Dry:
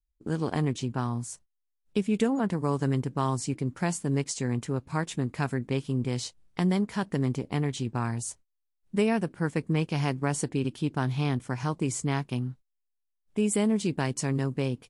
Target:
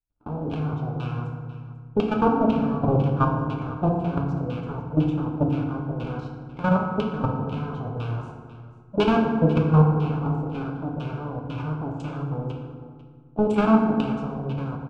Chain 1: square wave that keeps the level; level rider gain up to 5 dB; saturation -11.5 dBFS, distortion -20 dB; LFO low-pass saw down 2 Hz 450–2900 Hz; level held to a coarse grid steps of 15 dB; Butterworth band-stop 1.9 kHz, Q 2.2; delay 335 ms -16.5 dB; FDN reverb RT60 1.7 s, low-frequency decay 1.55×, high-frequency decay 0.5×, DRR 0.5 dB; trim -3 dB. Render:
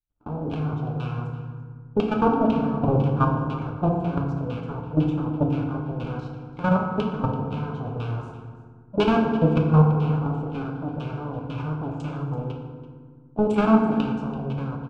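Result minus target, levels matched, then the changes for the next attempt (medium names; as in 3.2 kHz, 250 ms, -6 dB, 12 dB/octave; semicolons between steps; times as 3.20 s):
echo 159 ms early
change: delay 494 ms -16.5 dB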